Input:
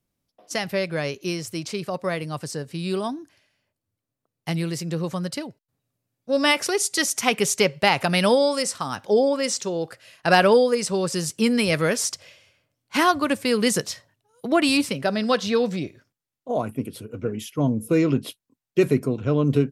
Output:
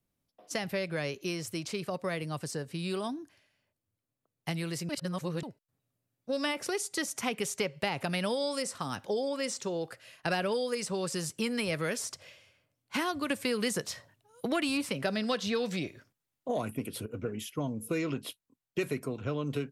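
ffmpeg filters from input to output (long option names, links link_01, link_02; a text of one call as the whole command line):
ffmpeg -i in.wav -filter_complex "[0:a]asettb=1/sr,asplit=3[link_01][link_02][link_03];[link_01]atrim=end=13.304[link_04];[link_02]atrim=start=13.3:end=17.06,asetpts=PTS-STARTPTS,afade=type=in:duration=0.004:curve=qsin,afade=type=out:start_time=3.756:duration=0.004:curve=qsin,acontrast=39[link_05];[link_03]atrim=start=17.056[link_06];[link_04][link_05]acrossfade=duration=0.004:curve1=hsin:curve2=qsin[link_07];[link_07][link_06]acrossfade=duration=0.004:curve1=qsin:curve2=hsin,asplit=3[link_08][link_09][link_10];[link_08]atrim=end=4.892[link_11];[link_09]atrim=start=4.888:end=5.432,asetpts=PTS-STARTPTS,areverse[link_12];[link_10]atrim=start=5.428[link_13];[link_11][link_12]acrossfade=duration=0.004:curve1=hsin:curve2=hsin[link_14];[link_14][link_13]acrossfade=duration=0.004:curve1=hsin:curve2=hsin,equalizer=frequency=5300:width=1.5:gain=-2.5,acrossover=split=590|1700[link_15][link_16][link_17];[link_15]acompressor=threshold=-30dB:ratio=4[link_18];[link_16]acompressor=threshold=-36dB:ratio=4[link_19];[link_17]acompressor=threshold=-32dB:ratio=4[link_20];[link_18][link_19][link_20]amix=inputs=3:normalize=0,volume=-3.5dB" out.wav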